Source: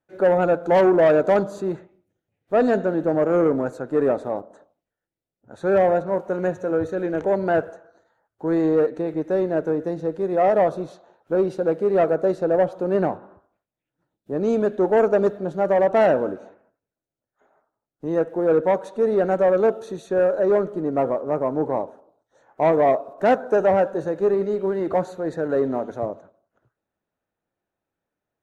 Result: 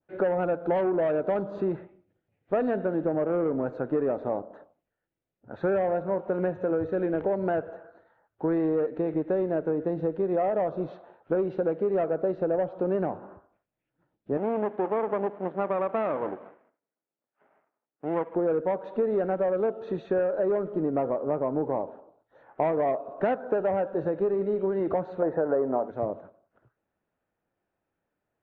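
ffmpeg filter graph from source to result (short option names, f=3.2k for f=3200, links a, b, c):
-filter_complex "[0:a]asettb=1/sr,asplit=3[a][b][c];[a]atrim=end=14.374[d];[b]atrim=start=14.37:end=18.35,asetpts=PTS-STARTPTS,afade=t=in:d=0.004:c=qsin,afade=t=out:st=3.976:d=0.004:c=qsin,aeval=exprs='max(val(0),0)':c=same,highpass=230,lowpass=2.3k[e];[c]atrim=start=18.346[f];[d][e]acrossfade=d=0.004:c1=hsin:c2=qsin[g];[g][f]acrossfade=d=0.004:c1=qsin:c2=hsin,asettb=1/sr,asplit=3[h][i][j];[h]atrim=end=25.224[k];[i]atrim=start=25.22:end=25.88,asetpts=PTS-STARTPTS,afade=t=in:d=0.004:c=qsin,afade=t=out:st=0.656:d=0.004:c=qsin,lowpass=1.9k,equalizer=f=820:t=o:w=2.4:g=12.5[l];[j]atrim=start=25.876[m];[k][l]acrossfade=d=0.004:c1=hsin:c2=qsin[n];[n][m]acrossfade=d=0.004:c1=qsin:c2=hsin,lowpass=f=3k:w=0.5412,lowpass=f=3k:w=1.3066,acompressor=threshold=-25dB:ratio=6,adynamicequalizer=threshold=0.00501:dfrequency=1900:dqfactor=0.91:tfrequency=1900:tqfactor=0.91:attack=5:release=100:ratio=0.375:range=2:mode=cutabove:tftype=bell,volume=2dB"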